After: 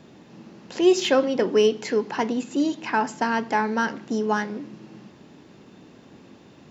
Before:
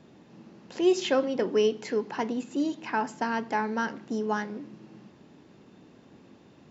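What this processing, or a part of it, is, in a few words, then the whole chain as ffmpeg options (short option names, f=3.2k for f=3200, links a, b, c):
exciter from parts: -filter_complex "[0:a]asplit=2[a][b];[b]highpass=f=2.1k:p=1,asoftclip=type=tanh:threshold=-33dB,volume=-8dB[c];[a][c]amix=inputs=2:normalize=0,volume=5dB"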